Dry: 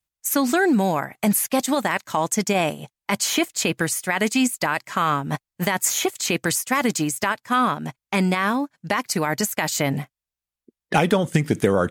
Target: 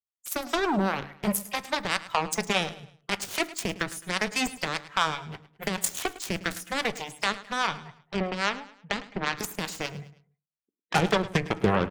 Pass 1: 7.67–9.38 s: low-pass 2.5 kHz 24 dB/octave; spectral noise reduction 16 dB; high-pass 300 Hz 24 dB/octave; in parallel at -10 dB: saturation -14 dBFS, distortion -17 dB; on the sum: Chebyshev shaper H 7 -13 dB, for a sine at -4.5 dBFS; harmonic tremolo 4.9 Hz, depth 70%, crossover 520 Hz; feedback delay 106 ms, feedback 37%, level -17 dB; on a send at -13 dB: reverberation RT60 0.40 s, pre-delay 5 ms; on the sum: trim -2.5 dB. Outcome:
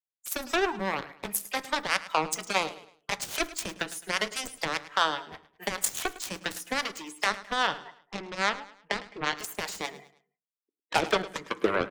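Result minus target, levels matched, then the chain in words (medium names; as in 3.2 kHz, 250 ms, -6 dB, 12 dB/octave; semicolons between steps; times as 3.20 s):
250 Hz band -5.0 dB
7.67–9.38 s: low-pass 2.5 kHz 24 dB/octave; spectral noise reduction 16 dB; in parallel at -10 dB: saturation -14 dBFS, distortion -16 dB; on the sum: Chebyshev shaper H 7 -13 dB, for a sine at -4.5 dBFS; harmonic tremolo 4.9 Hz, depth 70%, crossover 520 Hz; feedback delay 106 ms, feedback 37%, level -17 dB; on a send at -13 dB: reverberation RT60 0.40 s, pre-delay 5 ms; on the sum: trim -2.5 dB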